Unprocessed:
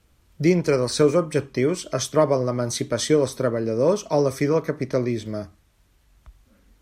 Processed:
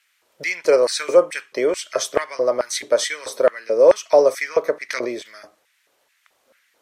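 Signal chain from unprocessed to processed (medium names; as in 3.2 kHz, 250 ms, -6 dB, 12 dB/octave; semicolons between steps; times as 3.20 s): LFO high-pass square 2.3 Hz 540–1900 Hz; 4.89–5.34 s: swell ahead of each attack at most 26 dB/s; trim +2 dB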